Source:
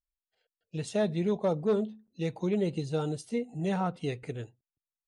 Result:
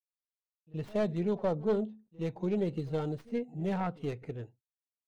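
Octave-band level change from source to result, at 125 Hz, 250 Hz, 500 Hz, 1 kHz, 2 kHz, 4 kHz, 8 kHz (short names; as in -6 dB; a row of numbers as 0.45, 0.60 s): -2.5 dB, -2.5 dB, -2.5 dB, -2.5 dB, -4.0 dB, -7.5 dB, under -10 dB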